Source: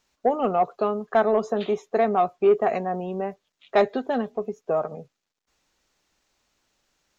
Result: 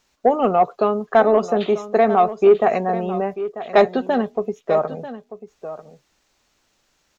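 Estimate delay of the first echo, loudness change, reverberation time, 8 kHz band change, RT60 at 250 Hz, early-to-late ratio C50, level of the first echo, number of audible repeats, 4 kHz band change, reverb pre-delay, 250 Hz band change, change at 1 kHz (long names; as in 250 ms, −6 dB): 941 ms, +5.5 dB, no reverb audible, can't be measured, no reverb audible, no reverb audible, −13.5 dB, 1, +5.5 dB, no reverb audible, +5.5 dB, +5.5 dB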